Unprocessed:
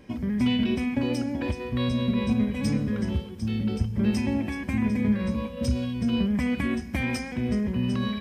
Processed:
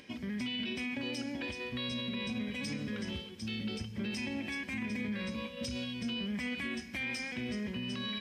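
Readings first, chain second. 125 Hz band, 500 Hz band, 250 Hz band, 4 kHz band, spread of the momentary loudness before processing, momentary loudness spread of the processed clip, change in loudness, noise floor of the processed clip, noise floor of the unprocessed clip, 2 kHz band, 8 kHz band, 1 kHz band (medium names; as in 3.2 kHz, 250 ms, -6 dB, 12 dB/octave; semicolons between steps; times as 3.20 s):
-15.5 dB, -10.5 dB, -12.5 dB, -0.5 dB, 5 LU, 3 LU, -10.5 dB, -47 dBFS, -38 dBFS, -2.5 dB, -4.5 dB, -10.5 dB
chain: frequency weighting D; upward compressor, threshold -44 dBFS; peak limiter -20.5 dBFS, peak gain reduction 9.5 dB; trim -8 dB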